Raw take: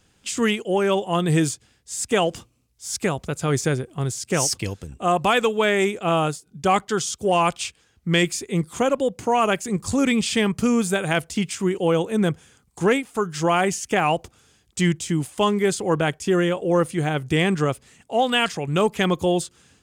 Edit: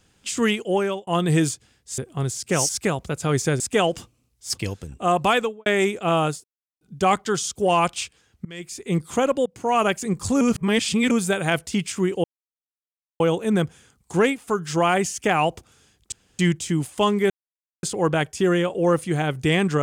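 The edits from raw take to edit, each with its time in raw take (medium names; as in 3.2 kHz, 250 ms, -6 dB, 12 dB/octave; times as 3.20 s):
0.76–1.07 s: fade out
1.98–2.88 s: swap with 3.79–4.50 s
5.31–5.66 s: studio fade out
6.44 s: insert silence 0.37 s
8.08–8.53 s: fade in quadratic, from -23 dB
9.09–9.40 s: fade in, from -18 dB
10.04–10.74 s: reverse
11.87 s: insert silence 0.96 s
14.79 s: insert room tone 0.27 s
15.70 s: insert silence 0.53 s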